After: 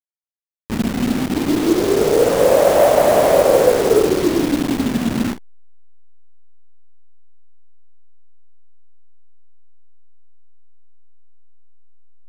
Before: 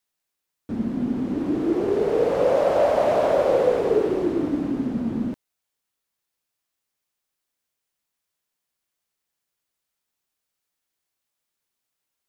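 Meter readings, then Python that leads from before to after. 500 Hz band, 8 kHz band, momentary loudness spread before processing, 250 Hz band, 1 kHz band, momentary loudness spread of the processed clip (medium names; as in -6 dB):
+6.5 dB, no reading, 9 LU, +6.0 dB, +7.0 dB, 10 LU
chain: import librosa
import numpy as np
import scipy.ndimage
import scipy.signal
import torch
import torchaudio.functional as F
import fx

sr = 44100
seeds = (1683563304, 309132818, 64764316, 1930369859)

y = fx.delta_hold(x, sr, step_db=-25.5)
y = fx.doubler(y, sr, ms=47.0, db=-13)
y = y * librosa.db_to_amplitude(7.0)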